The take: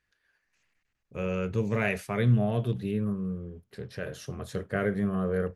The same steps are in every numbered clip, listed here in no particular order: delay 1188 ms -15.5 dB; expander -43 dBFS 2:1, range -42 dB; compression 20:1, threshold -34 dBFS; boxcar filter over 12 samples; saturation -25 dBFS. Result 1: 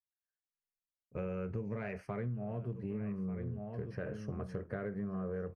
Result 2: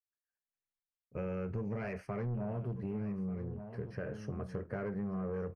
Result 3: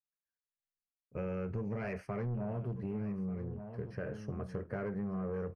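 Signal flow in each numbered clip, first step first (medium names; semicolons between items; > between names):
boxcar filter > expander > delay > compression > saturation; saturation > delay > expander > compression > boxcar filter; saturation > boxcar filter > expander > delay > compression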